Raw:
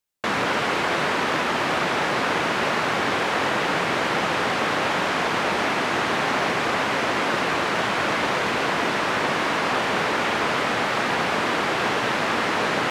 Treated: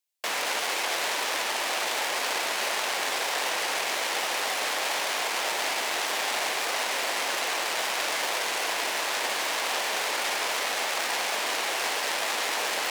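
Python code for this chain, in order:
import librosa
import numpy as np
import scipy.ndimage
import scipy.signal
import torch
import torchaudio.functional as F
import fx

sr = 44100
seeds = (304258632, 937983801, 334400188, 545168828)

y = fx.tracing_dist(x, sr, depth_ms=0.19)
y = scipy.signal.sosfilt(scipy.signal.butter(2, 780.0, 'highpass', fs=sr, output='sos'), y)
y = fx.peak_eq(y, sr, hz=1300.0, db=-9.0, octaves=1.0)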